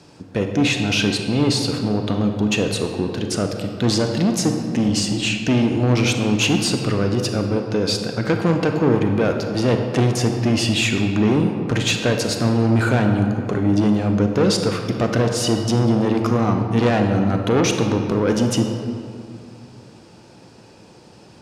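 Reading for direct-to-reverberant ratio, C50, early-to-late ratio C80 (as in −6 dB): 4.0 dB, 5.0 dB, 6.0 dB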